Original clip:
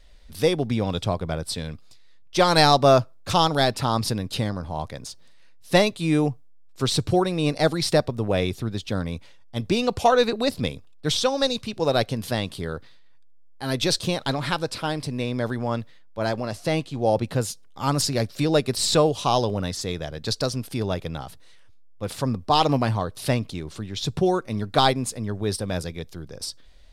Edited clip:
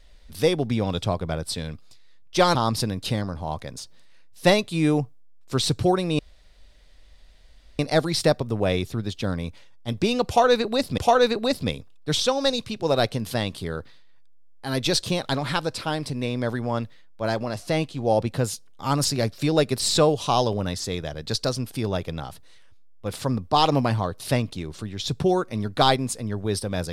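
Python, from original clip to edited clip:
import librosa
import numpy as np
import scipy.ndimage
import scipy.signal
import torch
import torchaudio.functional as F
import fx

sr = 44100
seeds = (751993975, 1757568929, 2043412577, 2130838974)

y = fx.edit(x, sr, fx.cut(start_s=2.55, length_s=1.28),
    fx.insert_room_tone(at_s=7.47, length_s=1.6),
    fx.repeat(start_s=9.95, length_s=0.71, count=2), tone=tone)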